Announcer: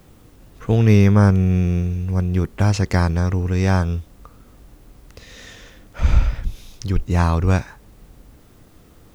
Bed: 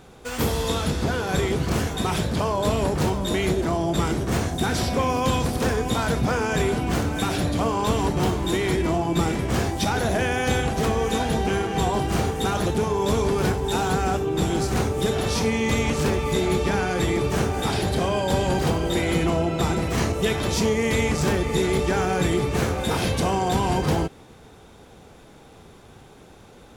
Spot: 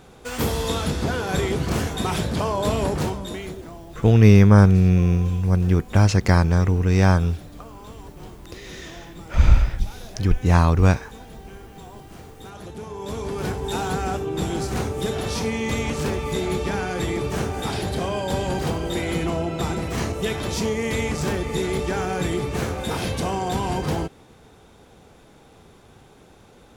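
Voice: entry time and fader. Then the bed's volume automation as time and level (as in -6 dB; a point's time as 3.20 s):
3.35 s, +1.0 dB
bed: 2.94 s 0 dB
3.89 s -19.5 dB
12.25 s -19.5 dB
13.64 s -2.5 dB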